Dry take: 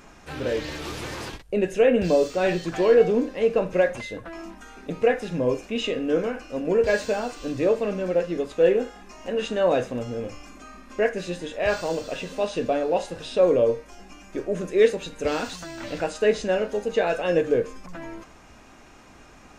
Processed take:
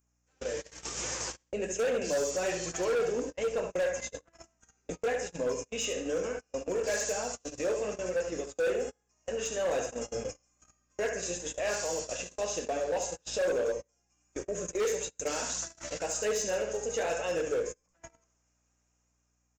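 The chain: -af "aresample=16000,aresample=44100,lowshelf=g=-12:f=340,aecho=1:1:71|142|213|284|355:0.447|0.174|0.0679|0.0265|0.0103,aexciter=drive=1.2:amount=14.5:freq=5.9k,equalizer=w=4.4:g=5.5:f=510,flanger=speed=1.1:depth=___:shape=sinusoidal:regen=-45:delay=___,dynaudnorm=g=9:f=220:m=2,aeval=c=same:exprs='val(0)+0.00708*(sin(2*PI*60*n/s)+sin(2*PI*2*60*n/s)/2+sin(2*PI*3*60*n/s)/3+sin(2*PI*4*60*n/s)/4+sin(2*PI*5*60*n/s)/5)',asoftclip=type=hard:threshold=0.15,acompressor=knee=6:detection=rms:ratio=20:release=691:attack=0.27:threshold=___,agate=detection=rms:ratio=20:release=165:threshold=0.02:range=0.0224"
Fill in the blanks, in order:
7.5, 4.4, 0.0501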